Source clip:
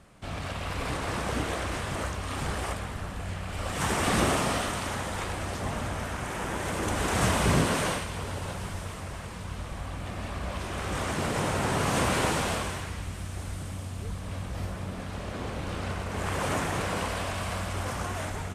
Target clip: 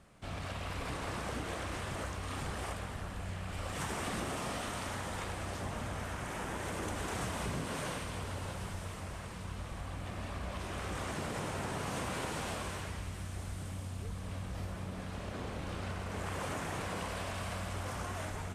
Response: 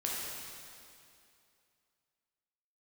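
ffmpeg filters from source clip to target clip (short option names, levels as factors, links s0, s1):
-filter_complex "[0:a]asplit=2[s0][s1];[1:a]atrim=start_sample=2205,adelay=32[s2];[s1][s2]afir=irnorm=-1:irlink=0,volume=0.15[s3];[s0][s3]amix=inputs=2:normalize=0,acompressor=threshold=0.0355:ratio=5,volume=0.531"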